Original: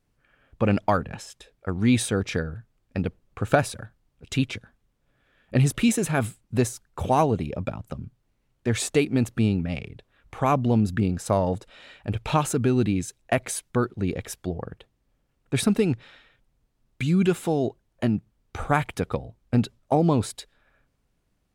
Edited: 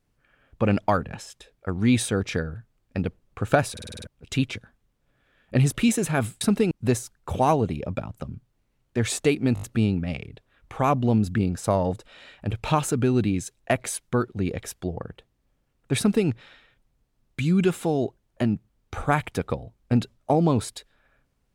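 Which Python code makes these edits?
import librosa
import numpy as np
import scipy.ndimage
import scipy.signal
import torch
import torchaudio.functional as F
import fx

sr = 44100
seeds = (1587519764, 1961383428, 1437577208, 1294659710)

y = fx.edit(x, sr, fx.stutter_over(start_s=3.72, slice_s=0.05, count=7),
    fx.stutter(start_s=9.24, slice_s=0.02, count=5),
    fx.duplicate(start_s=15.6, length_s=0.3, to_s=6.41), tone=tone)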